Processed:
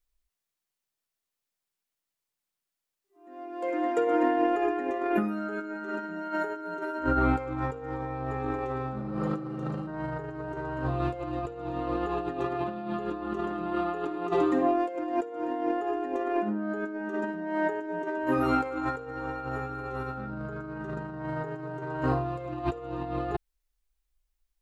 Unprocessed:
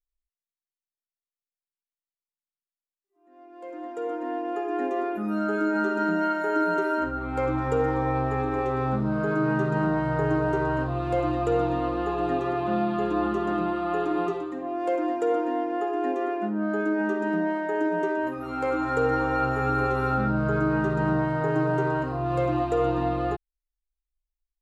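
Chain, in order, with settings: 3.68–6.17 bell 2100 Hz +5.5 dB 0.61 oct; 9.03–9.85 spectral repair 330–2700 Hz before; negative-ratio compressor -31 dBFS, ratio -0.5; gain +2 dB

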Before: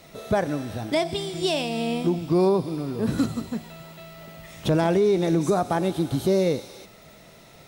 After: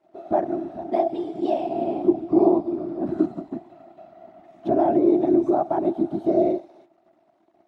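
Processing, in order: crossover distortion -47.5 dBFS; whisperiser; double band-pass 480 Hz, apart 0.95 oct; gain +9 dB

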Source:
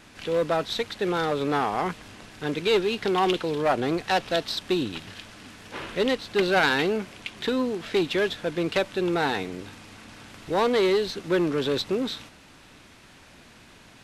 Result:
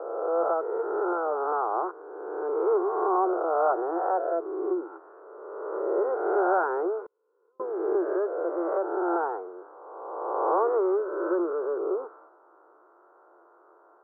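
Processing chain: spectral swells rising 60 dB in 1.79 s; Chebyshev band-pass 340–1400 Hz, order 5; 7.06–7.6 flipped gate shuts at -33 dBFS, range -40 dB; gain -3 dB

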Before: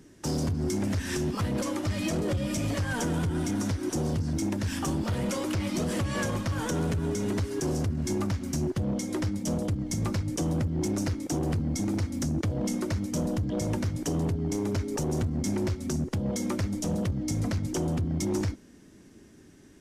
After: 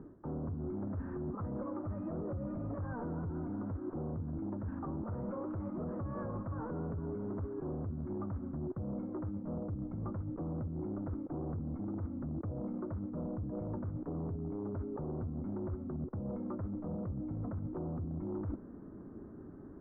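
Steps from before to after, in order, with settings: tracing distortion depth 0.026 ms; elliptic low-pass 1300 Hz, stop band 80 dB; reverse; compressor 16:1, threshold -41 dBFS, peak gain reduction 15.5 dB; reverse; gain +5 dB

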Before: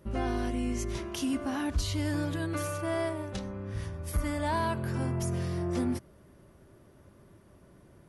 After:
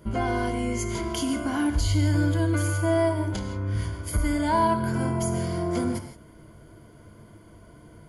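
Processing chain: ripple EQ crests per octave 1.8, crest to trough 11 dB; non-linear reverb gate 0.19 s flat, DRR 7.5 dB; dynamic EQ 3200 Hz, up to -3 dB, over -47 dBFS, Q 0.81; in parallel at -1 dB: compressor, threshold -28 dBFS, peak gain reduction 7.5 dB

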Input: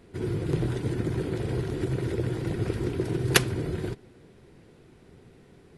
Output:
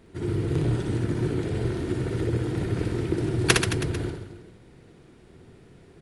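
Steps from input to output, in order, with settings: speed mistake 25 fps video run at 24 fps; reverse bouncing-ball echo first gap 60 ms, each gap 1.2×, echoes 5

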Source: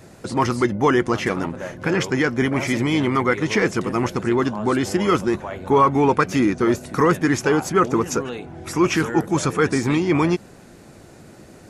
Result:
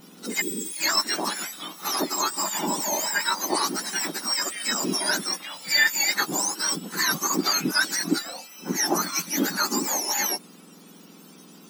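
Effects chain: spectrum mirrored in octaves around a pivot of 1400 Hz; spectral repair 0.44–0.72, 510–6300 Hz after; reverse echo 71 ms -19 dB; gain -1 dB

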